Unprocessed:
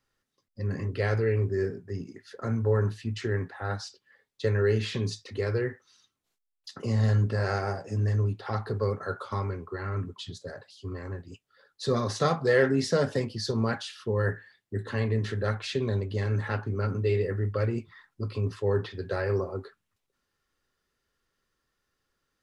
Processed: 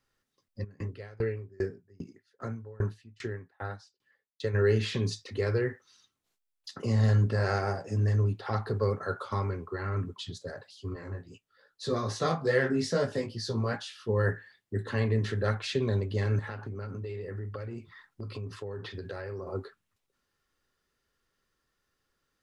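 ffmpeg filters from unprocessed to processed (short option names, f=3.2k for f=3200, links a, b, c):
-filter_complex "[0:a]asplit=3[a][b][c];[a]afade=t=out:st=0.63:d=0.02[d];[b]aeval=exprs='val(0)*pow(10,-29*if(lt(mod(2.5*n/s,1),2*abs(2.5)/1000),1-mod(2.5*n/s,1)/(2*abs(2.5)/1000),(mod(2.5*n/s,1)-2*abs(2.5)/1000)/(1-2*abs(2.5)/1000))/20)':c=same,afade=t=in:st=0.63:d=0.02,afade=t=out:st=4.53:d=0.02[e];[c]afade=t=in:st=4.53:d=0.02[f];[d][e][f]amix=inputs=3:normalize=0,asettb=1/sr,asplit=3[g][h][i];[g]atrim=end=10.944[j];[h]atrim=start=10.94:end=14.09,asetpts=PTS-STARTPTS,afade=t=in:d=0.004:c=qsin,afade=t=out:st=3.146:d=0.004:c=qsin,flanger=delay=16:depth=3.7:speed=2.4[k];[i]atrim=start=14.086[l];[j][k]acrossfade=d=0.004:c1=hsin:c2=qsin[m];[m][l]acrossfade=d=0.004:c1=qsin:c2=hsin,asettb=1/sr,asplit=3[n][o][p];[n]atrim=end=16.394[q];[o]atrim=start=16.39:end=19.47,asetpts=PTS-STARTPTS,afade=t=in:d=0.004:c=qsin,afade=t=out:st=3.076:d=0.004:c=qsin,acompressor=threshold=-34dB:ratio=10:attack=3.2:release=140:knee=1:detection=peak[r];[p]atrim=start=19.466[s];[q][r]acrossfade=d=0.004:c1=hsin:c2=qsin[t];[t][s]acrossfade=d=0.004:c1=qsin:c2=hsin"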